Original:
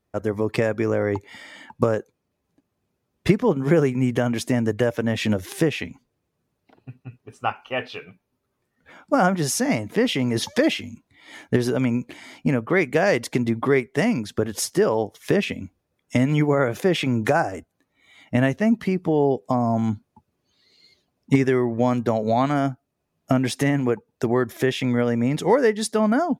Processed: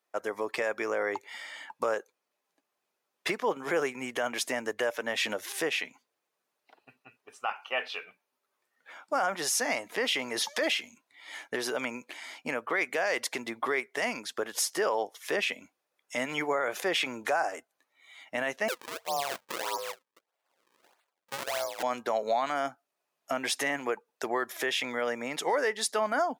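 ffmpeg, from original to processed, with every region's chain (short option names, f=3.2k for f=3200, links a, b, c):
-filter_complex "[0:a]asettb=1/sr,asplit=3[a][b][c];[a]atrim=end=18.684[d];[b]atrim=start=18.68:end=21.83,asetpts=PTS-STARTPTS,afade=t=in:d=0.004:c=qsin,afade=t=out:st=3.146:d=0.004:c=qsin,highpass=250,aeval=exprs='val(0)*sin(2*PI*280*n/s)':c=same,acrusher=samples=36:mix=1:aa=0.000001:lfo=1:lforange=57.6:lforate=1.6[e];[c]atrim=start=21.826[f];[d][e]acrossfade=d=0.004:c1=hsin:c2=qsin[g];[g][f]acrossfade=d=0.004:c1=qsin:c2=hsin,highpass=710,alimiter=limit=-18.5dB:level=0:latency=1:release=27"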